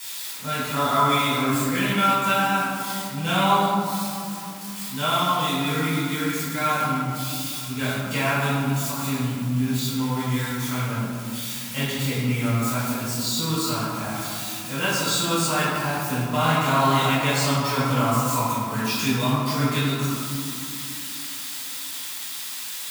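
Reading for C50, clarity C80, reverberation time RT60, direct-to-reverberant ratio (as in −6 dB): −2.5 dB, −0.5 dB, 2.6 s, −10.0 dB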